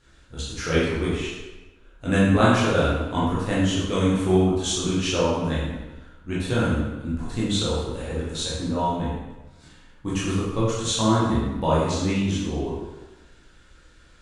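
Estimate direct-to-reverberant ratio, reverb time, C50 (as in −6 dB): −8.5 dB, 1.2 s, −1.0 dB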